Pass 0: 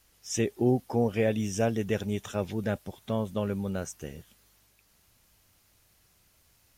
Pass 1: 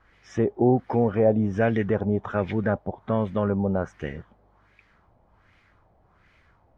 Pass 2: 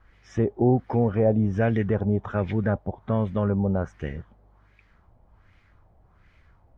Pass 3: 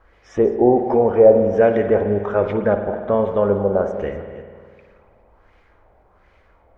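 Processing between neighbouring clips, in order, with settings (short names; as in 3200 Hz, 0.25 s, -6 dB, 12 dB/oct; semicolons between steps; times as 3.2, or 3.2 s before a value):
in parallel at +2 dB: limiter -23 dBFS, peak gain reduction 10 dB; on the sum: notch 2700 Hz, Q 13; LFO low-pass sine 1.3 Hz 730–2200 Hz
low shelf 120 Hz +11 dB; gain -2.5 dB
reverse delay 0.201 s, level -13.5 dB; graphic EQ 125/500/1000 Hz -10/+10/+4 dB; spring tank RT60 2 s, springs 49 ms, chirp 60 ms, DRR 6.5 dB; gain +2 dB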